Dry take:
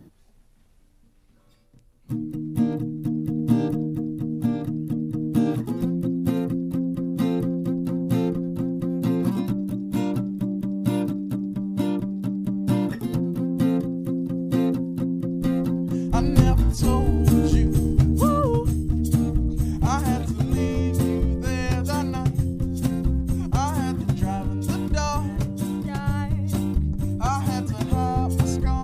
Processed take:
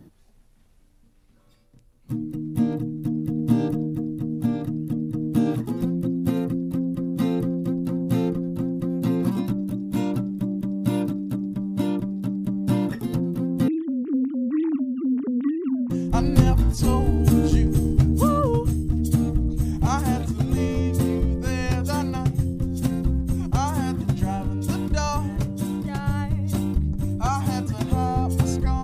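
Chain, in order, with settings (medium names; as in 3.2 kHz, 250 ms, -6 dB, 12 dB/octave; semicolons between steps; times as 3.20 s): 13.68–15.90 s: formants replaced by sine waves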